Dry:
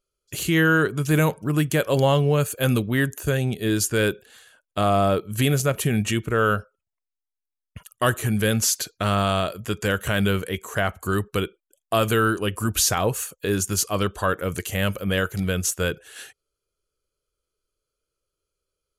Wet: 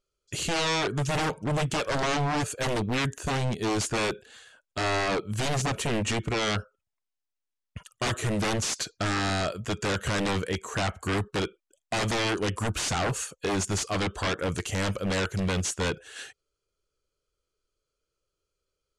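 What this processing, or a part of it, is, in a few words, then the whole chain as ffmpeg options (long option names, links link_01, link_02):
synthesiser wavefolder: -af "aeval=exprs='0.0841*(abs(mod(val(0)/0.0841+3,4)-2)-1)':channel_layout=same,lowpass=frequency=8500:width=0.5412,lowpass=frequency=8500:width=1.3066"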